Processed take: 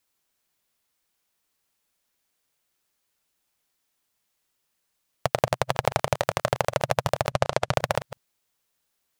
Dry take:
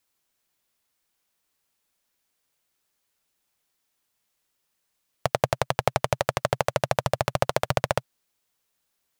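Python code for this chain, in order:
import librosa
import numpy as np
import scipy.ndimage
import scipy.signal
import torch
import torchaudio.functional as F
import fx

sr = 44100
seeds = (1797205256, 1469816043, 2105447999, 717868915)

y = fx.reverse_delay(x, sr, ms=122, wet_db=-13.5)
y = fx.lowpass(y, sr, hz=8600.0, slope=12, at=(7.31, 7.74))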